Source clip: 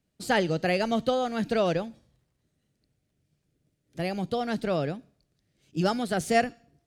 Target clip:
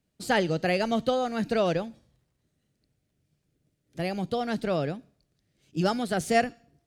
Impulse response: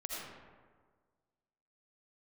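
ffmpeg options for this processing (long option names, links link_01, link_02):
-filter_complex "[0:a]asettb=1/sr,asplit=3[link_01][link_02][link_03];[link_01]atrim=end=1.164[link_04];[link_02]atrim=start=1.16:end=1.57,asetpts=PTS-STARTPTS,afade=type=in:duration=0.004:curve=qsin,afade=type=out:start_time=0.406:duration=0.004:curve=qsin,bandreject=frequency=3300:width=9.8[link_05];[link_03]atrim=start=1.566[link_06];[link_04][link_05]acrossfade=duration=0.004:curve1=hsin:curve2=qsin[link_07];[link_07][link_06]acrossfade=duration=0.004:curve1=qsin:curve2=hsin"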